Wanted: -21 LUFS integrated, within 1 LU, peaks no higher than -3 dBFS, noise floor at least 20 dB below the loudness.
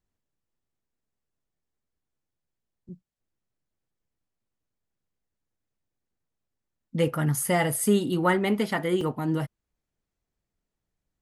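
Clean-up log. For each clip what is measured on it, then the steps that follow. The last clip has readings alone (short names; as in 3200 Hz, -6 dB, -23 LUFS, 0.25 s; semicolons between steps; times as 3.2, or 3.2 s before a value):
dropouts 1; longest dropout 2.6 ms; loudness -25.5 LUFS; peak -9.0 dBFS; loudness target -21.0 LUFS
-> interpolate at 9.01, 2.6 ms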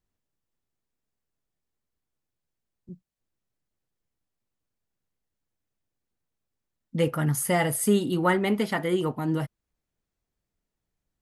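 dropouts 0; loudness -25.5 LUFS; peak -9.0 dBFS; loudness target -21.0 LUFS
-> gain +4.5 dB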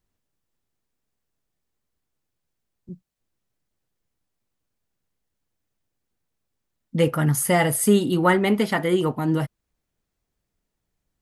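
loudness -21.0 LUFS; peak -4.5 dBFS; noise floor -81 dBFS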